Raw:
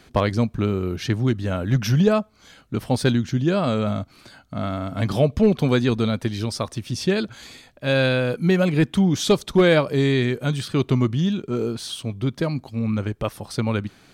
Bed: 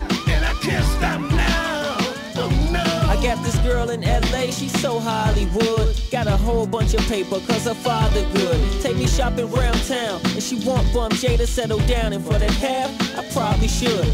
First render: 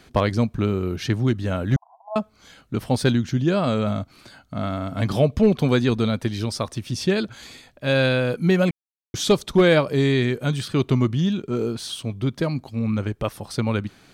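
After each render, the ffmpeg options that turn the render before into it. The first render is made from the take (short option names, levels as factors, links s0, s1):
-filter_complex "[0:a]asettb=1/sr,asplit=3[s0][s1][s2];[s0]atrim=end=1.764[s3];[s1]atrim=start=1.76:end=2.16,asetpts=PTS-STARTPTS,afade=t=in:d=0.004:c=qsin,afade=t=out:st=0.396:d=0.004:c=qsin,asuperpass=centerf=840:order=12:qfactor=2.3[s4];[s2]atrim=start=2.156[s5];[s3][s4]acrossfade=d=0.004:c1=hsin:c2=qsin[s6];[s6][s5]acrossfade=d=0.004:c1=qsin:c2=hsin,asplit=3[s7][s8][s9];[s7]atrim=end=8.71,asetpts=PTS-STARTPTS,afade=t=out:st=8.706:d=0.004:c=hsin[s10];[s8]atrim=start=8.71:end=9.14,asetpts=PTS-STARTPTS,volume=0[s11];[s9]atrim=start=9.14,asetpts=PTS-STARTPTS,afade=t=in:d=0.004:c=hsin[s12];[s10][s11][s12]concat=n=3:v=0:a=1"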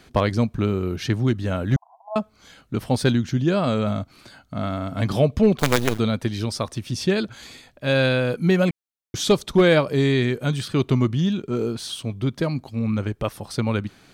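-filter_complex "[0:a]asplit=3[s0][s1][s2];[s0]afade=t=out:st=5.58:d=0.02[s3];[s1]acrusher=bits=3:dc=4:mix=0:aa=0.000001,afade=t=in:st=5.58:d=0.02,afade=t=out:st=5.98:d=0.02[s4];[s2]afade=t=in:st=5.98:d=0.02[s5];[s3][s4][s5]amix=inputs=3:normalize=0"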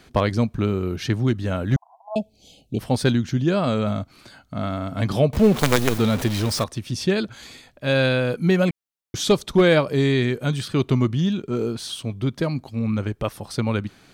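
-filter_complex "[0:a]asettb=1/sr,asplit=3[s0][s1][s2];[s0]atrim=end=2.154[s3];[s1]atrim=start=2.15:end=2.79,asetpts=PTS-STARTPTS,afade=t=in:d=0.004:c=qsin,afade=t=out:st=0.636:d=0.004:c=qsin,asuperstop=centerf=1400:order=12:qfactor=0.82[s4];[s2]atrim=start=2.786[s5];[s3][s4]acrossfade=d=0.004:c1=hsin:c2=qsin[s6];[s6][s5]acrossfade=d=0.004:c1=qsin:c2=hsin,asettb=1/sr,asplit=3[s7][s8][s9];[s7]atrim=end=5.334[s10];[s8]atrim=start=5.33:end=6.64,asetpts=PTS-STARTPTS,afade=t=in:d=0.004:c=qsin,afade=t=out:st=1.306:d=0.004:c=qsin,aeval=exprs='val(0)+0.5*0.0596*sgn(val(0))':c=same[s11];[s9]atrim=start=6.636[s12];[s10][s11]acrossfade=d=0.004:c1=hsin:c2=qsin[s13];[s13][s12]acrossfade=d=0.004:c1=qsin:c2=hsin"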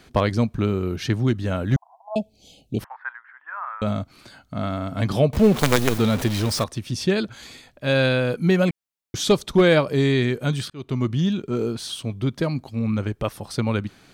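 -filter_complex "[0:a]asettb=1/sr,asplit=3[s0][s1][s2];[s0]atrim=end=2.844[s3];[s1]atrim=start=2.84:end=3.82,asetpts=PTS-STARTPTS,afade=t=in:d=0.004:c=qsin,afade=t=out:st=0.976:d=0.004:c=qsin,asuperpass=centerf=1300:order=8:qfactor=1.3[s4];[s2]atrim=start=3.816[s5];[s3][s4]acrossfade=d=0.004:c1=hsin:c2=qsin[s6];[s6][s5]acrossfade=d=0.004:c1=qsin:c2=hsin,asplit=2[s7][s8];[s7]atrim=end=10.7,asetpts=PTS-STARTPTS,afade=t=out:st=10.696:d=0.004:c=hsin[s9];[s8]atrim=start=10.7,asetpts=PTS-STARTPTS,afade=t=in:d=0.47[s10];[s9][s10]concat=n=2:v=0:a=1"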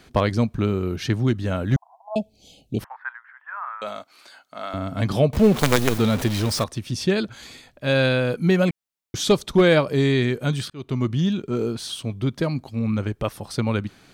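-filter_complex "[0:a]asettb=1/sr,asplit=3[s0][s1][s2];[s0]atrim=end=3.004[s3];[s1]atrim=start=3:end=4.74,asetpts=PTS-STARTPTS,afade=t=in:d=0.004:c=qsin,afade=t=out:st=1.736:d=0.004:c=qsin,highpass=620[s4];[s2]atrim=start=4.736[s5];[s3][s4]acrossfade=d=0.004:c1=hsin:c2=qsin[s6];[s6][s5]acrossfade=d=0.004:c1=qsin:c2=hsin"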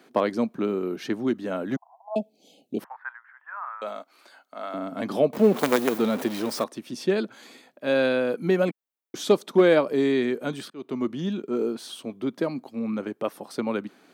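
-af "highpass=f=230:w=0.5412,highpass=f=230:w=1.3066,equalizer=f=5300:w=0.32:g=-8.5"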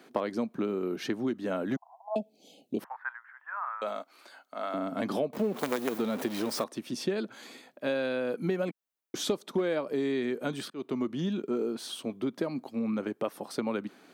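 -af "acompressor=threshold=0.0447:ratio=5"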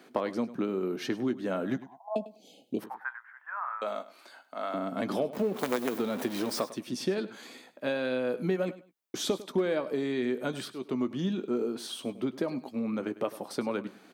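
-filter_complex "[0:a]asplit=2[s0][s1];[s1]adelay=16,volume=0.224[s2];[s0][s2]amix=inputs=2:normalize=0,aecho=1:1:101|202:0.15|0.0314"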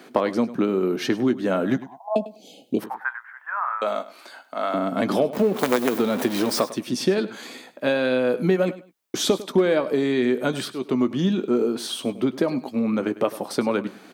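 -af "volume=2.82"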